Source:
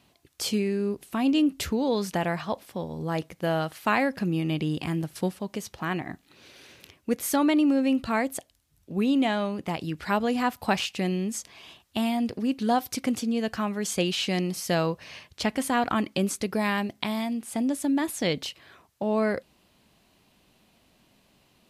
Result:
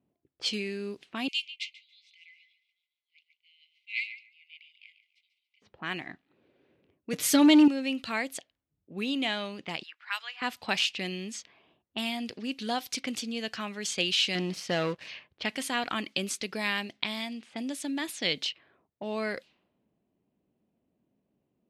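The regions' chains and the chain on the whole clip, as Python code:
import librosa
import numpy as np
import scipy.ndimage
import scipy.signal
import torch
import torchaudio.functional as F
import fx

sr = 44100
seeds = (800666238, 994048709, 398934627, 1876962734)

y = fx.chain(x, sr, fx.brickwall_bandpass(low_hz=2000.0, high_hz=12000.0),
    fx.echo_feedback(ms=144, feedback_pct=45, wet_db=-7.5), at=(1.28, 5.62))
y = fx.chain(y, sr, fx.low_shelf(hz=280.0, db=11.5),
    fx.leveller(passes=1),
    fx.comb(ms=6.7, depth=0.77), at=(7.13, 7.68))
y = fx.chain(y, sr, fx.highpass(hz=1100.0, slope=24),
    fx.high_shelf(hz=6300.0, db=7.5), at=(9.83, 10.42))
y = fx.chain(y, sr, fx.lowpass(hz=1500.0, slope=6),
    fx.leveller(passes=2), at=(14.35, 15.08))
y = fx.env_lowpass(y, sr, base_hz=410.0, full_db=-24.5)
y = fx.weighting(y, sr, curve='D')
y = F.gain(torch.from_numpy(y), -7.5).numpy()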